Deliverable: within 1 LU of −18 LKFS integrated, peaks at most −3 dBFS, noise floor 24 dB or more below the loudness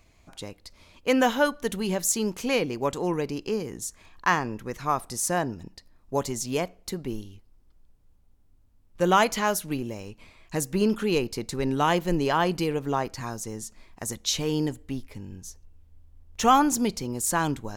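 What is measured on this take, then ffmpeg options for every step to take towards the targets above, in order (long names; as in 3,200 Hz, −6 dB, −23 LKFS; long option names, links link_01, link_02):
integrated loudness −26.5 LKFS; sample peak −8.0 dBFS; target loudness −18.0 LKFS
→ -af "volume=8.5dB,alimiter=limit=-3dB:level=0:latency=1"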